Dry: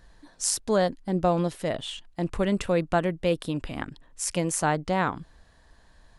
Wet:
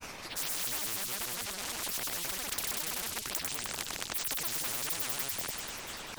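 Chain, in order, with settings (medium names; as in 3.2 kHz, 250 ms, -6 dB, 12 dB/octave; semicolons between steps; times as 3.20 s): chunks repeated in reverse 189 ms, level -0.5 dB; granulator 100 ms, grains 20 per s, spray 100 ms, pitch spread up and down by 12 st; in parallel at -1 dB: compressor with a negative ratio -31 dBFS; on the sum: saturation -18.5 dBFS, distortion -13 dB; feedback echo behind a high-pass 97 ms, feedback 68%, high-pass 4.9 kHz, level -5.5 dB; spectrum-flattening compressor 10:1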